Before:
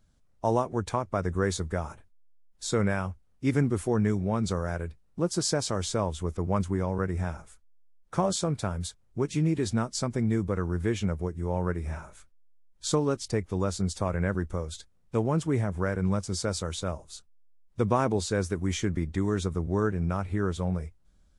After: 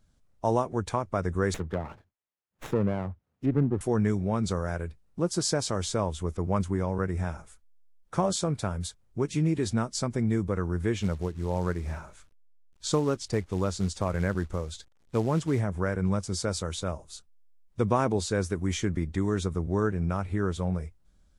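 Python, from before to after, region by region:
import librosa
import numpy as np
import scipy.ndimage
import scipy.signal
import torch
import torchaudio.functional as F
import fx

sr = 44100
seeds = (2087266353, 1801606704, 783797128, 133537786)

y = fx.chain(x, sr, fx.highpass(hz=79.0, slope=24),
    fx.env_lowpass_down(base_hz=930.0, full_db=-25.5),
    fx.running_max(window=9), at=(1.54, 3.81))
y = fx.chain(y, sr, fx.quant_companded(bits=6),
    fx.lowpass(hz=8500.0, slope=12), at=(10.96, 15.6))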